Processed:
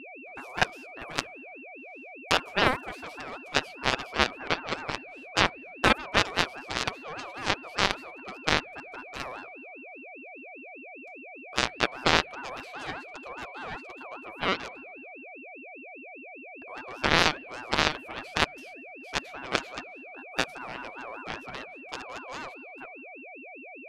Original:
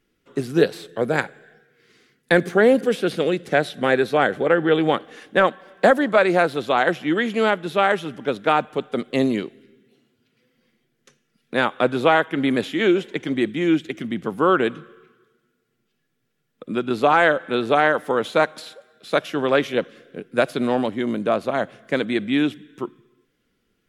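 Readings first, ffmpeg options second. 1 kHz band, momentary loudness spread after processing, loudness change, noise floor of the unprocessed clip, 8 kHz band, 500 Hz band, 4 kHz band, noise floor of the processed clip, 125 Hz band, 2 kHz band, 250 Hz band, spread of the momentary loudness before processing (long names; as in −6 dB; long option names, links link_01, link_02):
−8.0 dB, 19 LU, −8.5 dB, −71 dBFS, can't be measured, −15.5 dB, +1.5 dB, −45 dBFS, −8.5 dB, −5.5 dB, −15.5 dB, 10 LU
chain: -af "aeval=exprs='0.668*(cos(1*acos(clip(val(0)/0.668,-1,1)))-cos(1*PI/2))+0.266*(cos(3*acos(clip(val(0)/0.668,-1,1)))-cos(3*PI/2))+0.0299*(cos(4*acos(clip(val(0)/0.668,-1,1)))-cos(4*PI/2))+0.0168*(cos(6*acos(clip(val(0)/0.668,-1,1)))-cos(6*PI/2))+0.00841*(cos(8*acos(clip(val(0)/0.668,-1,1)))-cos(8*PI/2))':channel_layout=same,aeval=exprs='val(0)+0.01*sin(2*PI*1500*n/s)':channel_layout=same,aeval=exprs='val(0)*sin(2*PI*1000*n/s+1000*0.25/5*sin(2*PI*5*n/s))':channel_layout=same,volume=1dB"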